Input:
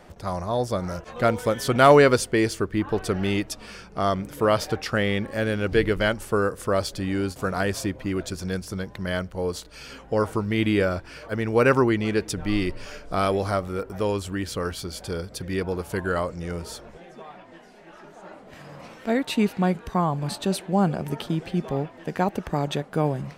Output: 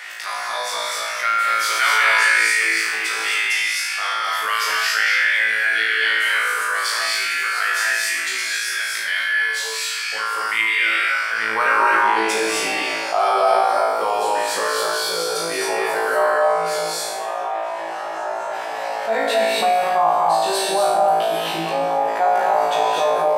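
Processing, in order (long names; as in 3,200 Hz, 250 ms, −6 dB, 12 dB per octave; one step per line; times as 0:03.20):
high-pass filter sweep 1,900 Hz → 720 Hz, 0:10.73–0:12.19
on a send: flutter between parallel walls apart 3.1 metres, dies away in 0.8 s
on the sum: reverb whose tail is shaped and stops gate 290 ms rising, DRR −2.5 dB
envelope flattener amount 50%
level −5.5 dB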